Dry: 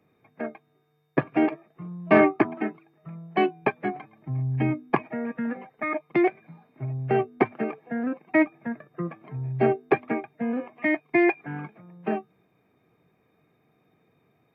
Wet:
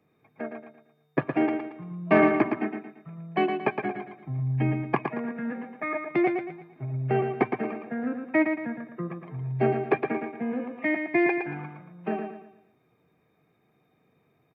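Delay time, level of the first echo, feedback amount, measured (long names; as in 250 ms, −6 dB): 114 ms, −6.0 dB, 38%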